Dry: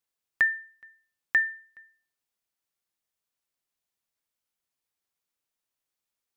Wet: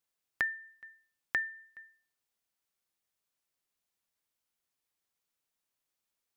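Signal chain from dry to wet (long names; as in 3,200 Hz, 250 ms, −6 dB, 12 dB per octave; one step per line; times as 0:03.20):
in parallel at +2 dB: downward compressor, threshold −35 dBFS, peak gain reduction 15 dB
on the sum: dynamic equaliser 2,100 Hz, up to −5 dB, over −31 dBFS, Q 1.4
level −7 dB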